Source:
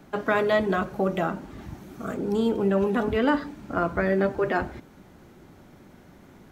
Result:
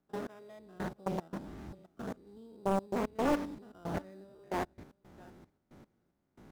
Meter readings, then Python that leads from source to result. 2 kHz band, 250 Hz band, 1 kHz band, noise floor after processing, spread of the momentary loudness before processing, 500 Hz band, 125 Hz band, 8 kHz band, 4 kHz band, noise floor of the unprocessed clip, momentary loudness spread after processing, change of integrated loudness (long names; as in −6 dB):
−17.0 dB, −11.5 dB, −10.0 dB, −79 dBFS, 14 LU, −13.5 dB, −11.0 dB, can't be measured, −12.0 dB, −52 dBFS, 23 LU, −12.5 dB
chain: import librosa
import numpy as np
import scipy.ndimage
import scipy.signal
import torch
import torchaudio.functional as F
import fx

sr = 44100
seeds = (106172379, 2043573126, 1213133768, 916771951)

p1 = fx.spec_steps(x, sr, hold_ms=100)
p2 = fx.dynamic_eq(p1, sr, hz=1400.0, q=0.82, threshold_db=-42.0, ratio=4.0, max_db=-4)
p3 = fx.sample_hold(p2, sr, seeds[0], rate_hz=4300.0, jitter_pct=0)
p4 = p2 + (p3 * librosa.db_to_amplitude(-5.0))
p5 = fx.step_gate(p4, sr, bpm=113, pattern='.x....x.x.xxx.', floor_db=-24.0, edge_ms=4.5)
p6 = p5 + fx.echo_single(p5, sr, ms=664, db=-22.5, dry=0)
p7 = fx.doppler_dist(p6, sr, depth_ms=0.87)
y = p7 * librosa.db_to_amplitude(-7.5)